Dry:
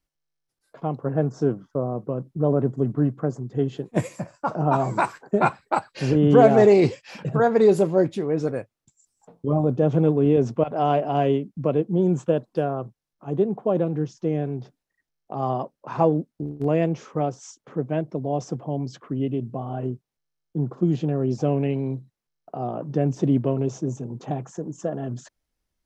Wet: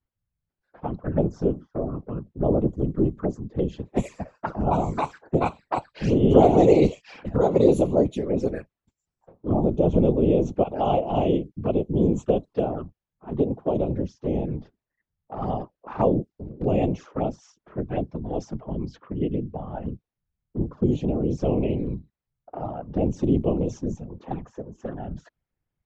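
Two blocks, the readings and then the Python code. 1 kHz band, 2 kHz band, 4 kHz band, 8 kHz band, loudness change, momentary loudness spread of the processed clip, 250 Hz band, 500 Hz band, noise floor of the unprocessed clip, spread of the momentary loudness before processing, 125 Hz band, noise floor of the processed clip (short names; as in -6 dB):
-2.5 dB, -8.0 dB, -2.0 dB, n/a, -1.0 dB, 16 LU, -0.5 dB, -1.5 dB, -83 dBFS, 13 LU, -2.0 dB, under -85 dBFS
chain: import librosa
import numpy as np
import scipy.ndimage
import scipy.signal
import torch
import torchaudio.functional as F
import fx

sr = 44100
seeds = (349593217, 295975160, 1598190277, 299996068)

y = fx.env_flanger(x, sr, rest_ms=7.1, full_db=-19.5)
y = fx.env_lowpass(y, sr, base_hz=2200.0, full_db=-18.0)
y = fx.whisperise(y, sr, seeds[0])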